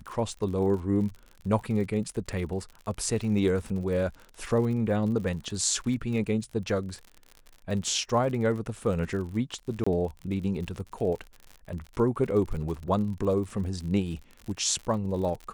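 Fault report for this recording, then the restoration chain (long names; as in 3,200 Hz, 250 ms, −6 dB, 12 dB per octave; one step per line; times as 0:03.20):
surface crackle 60 per second −36 dBFS
0:09.84–0:09.87: drop-out 25 ms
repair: click removal
repair the gap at 0:09.84, 25 ms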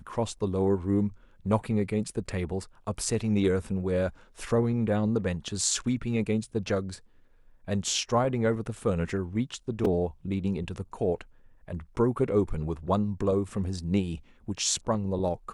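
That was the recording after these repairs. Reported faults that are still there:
none of them is left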